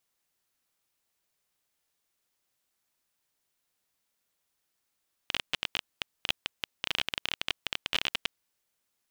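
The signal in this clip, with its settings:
Geiger counter clicks 20 per second −11 dBFS 3.00 s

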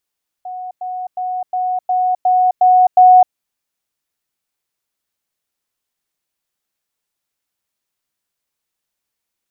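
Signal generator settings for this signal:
level staircase 735 Hz −24.5 dBFS, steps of 3 dB, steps 8, 0.26 s 0.10 s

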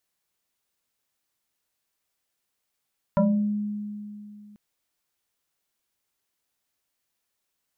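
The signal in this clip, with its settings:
two-operator FM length 1.39 s, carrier 208 Hz, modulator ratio 1.86, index 2, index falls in 0.49 s exponential, decay 2.75 s, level −16 dB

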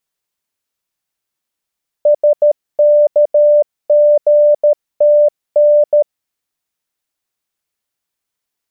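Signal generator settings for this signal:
Morse code "SKGTN" 13 words per minute 592 Hz −5.5 dBFS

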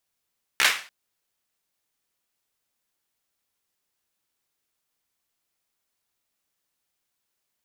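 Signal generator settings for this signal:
synth clap length 0.29 s, apart 15 ms, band 2,000 Hz, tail 0.38 s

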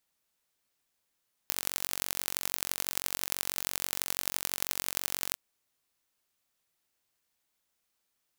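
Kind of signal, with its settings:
impulse train 46.1 per second, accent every 4, −1.5 dBFS 3.86 s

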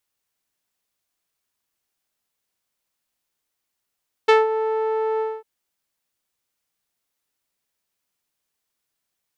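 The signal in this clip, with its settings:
subtractive voice saw A4 12 dB per octave, low-pass 920 Hz, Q 0.91, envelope 2 octaves, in 0.16 s, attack 12 ms, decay 0.18 s, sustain −10 dB, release 0.23 s, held 0.92 s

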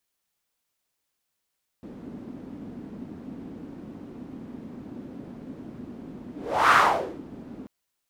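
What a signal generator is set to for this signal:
pass-by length 5.84 s, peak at 0:04.90, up 0.42 s, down 0.53 s, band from 250 Hz, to 1,300 Hz, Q 3.2, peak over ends 23 dB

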